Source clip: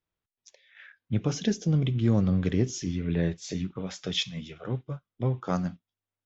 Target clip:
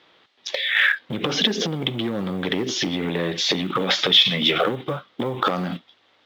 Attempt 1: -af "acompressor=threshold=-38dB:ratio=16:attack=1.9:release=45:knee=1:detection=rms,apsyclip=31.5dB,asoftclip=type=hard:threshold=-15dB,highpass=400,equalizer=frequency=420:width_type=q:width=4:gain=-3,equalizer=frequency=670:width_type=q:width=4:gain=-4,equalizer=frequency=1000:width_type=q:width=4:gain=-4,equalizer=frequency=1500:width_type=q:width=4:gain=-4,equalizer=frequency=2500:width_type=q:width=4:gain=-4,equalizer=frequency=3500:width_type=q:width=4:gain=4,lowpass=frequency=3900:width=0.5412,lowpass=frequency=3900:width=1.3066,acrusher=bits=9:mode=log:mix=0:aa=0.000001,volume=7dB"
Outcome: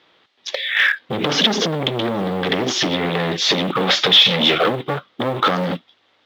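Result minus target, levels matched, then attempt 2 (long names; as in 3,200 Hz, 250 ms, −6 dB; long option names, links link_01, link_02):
downward compressor: peak gain reduction −9.5 dB
-af "acompressor=threshold=-48dB:ratio=16:attack=1.9:release=45:knee=1:detection=rms,apsyclip=31.5dB,asoftclip=type=hard:threshold=-15dB,highpass=400,equalizer=frequency=420:width_type=q:width=4:gain=-3,equalizer=frequency=670:width_type=q:width=4:gain=-4,equalizer=frequency=1000:width_type=q:width=4:gain=-4,equalizer=frequency=1500:width_type=q:width=4:gain=-4,equalizer=frequency=2500:width_type=q:width=4:gain=-4,equalizer=frequency=3500:width_type=q:width=4:gain=4,lowpass=frequency=3900:width=0.5412,lowpass=frequency=3900:width=1.3066,acrusher=bits=9:mode=log:mix=0:aa=0.000001,volume=7dB"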